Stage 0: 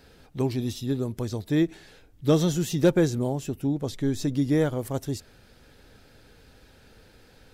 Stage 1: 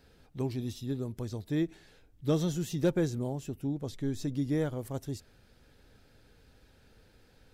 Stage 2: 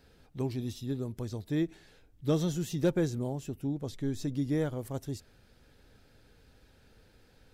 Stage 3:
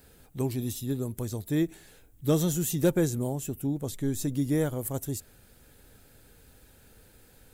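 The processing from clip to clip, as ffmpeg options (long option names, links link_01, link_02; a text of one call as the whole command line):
ffmpeg -i in.wav -af "lowshelf=frequency=200:gain=3.5,volume=-8.5dB" out.wav
ffmpeg -i in.wav -af anull out.wav
ffmpeg -i in.wav -af "aexciter=amount=4.6:drive=5:freq=7100,volume=3.5dB" out.wav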